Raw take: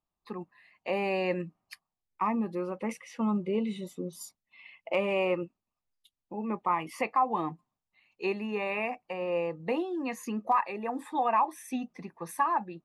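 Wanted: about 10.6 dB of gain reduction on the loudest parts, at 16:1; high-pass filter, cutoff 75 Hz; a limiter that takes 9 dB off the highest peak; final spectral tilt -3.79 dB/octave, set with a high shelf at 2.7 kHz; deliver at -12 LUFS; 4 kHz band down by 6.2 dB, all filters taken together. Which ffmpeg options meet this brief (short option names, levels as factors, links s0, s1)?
-af "highpass=75,highshelf=f=2700:g=-8,equalizer=f=4000:t=o:g=-3,acompressor=threshold=0.0251:ratio=16,volume=26.6,alimiter=limit=0.794:level=0:latency=1"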